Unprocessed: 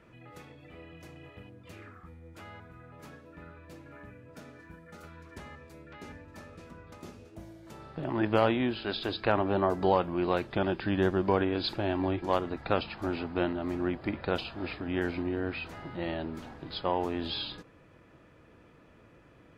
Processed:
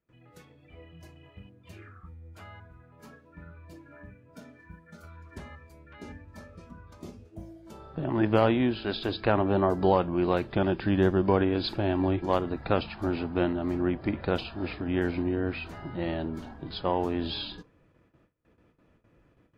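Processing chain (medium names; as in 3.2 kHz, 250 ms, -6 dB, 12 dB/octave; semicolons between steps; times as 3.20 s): spectral noise reduction 9 dB; gate with hold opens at -57 dBFS; bass shelf 440 Hz +5.5 dB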